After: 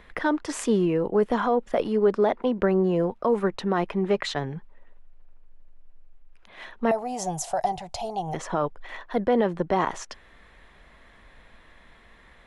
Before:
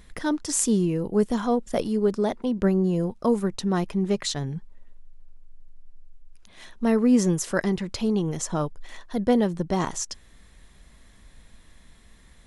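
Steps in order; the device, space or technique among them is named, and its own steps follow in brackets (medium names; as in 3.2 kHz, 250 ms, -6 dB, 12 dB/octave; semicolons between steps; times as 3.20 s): DJ mixer with the lows and highs turned down (three-band isolator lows -12 dB, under 390 Hz, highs -21 dB, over 3 kHz; peak limiter -20.5 dBFS, peak gain reduction 8.5 dB); 6.91–8.34 s: FFT filter 150 Hz 0 dB, 210 Hz -17 dB, 500 Hz -14 dB, 730 Hz +14 dB, 1.1 kHz -12 dB, 1.8 kHz -16 dB, 7 kHz +10 dB; trim +8 dB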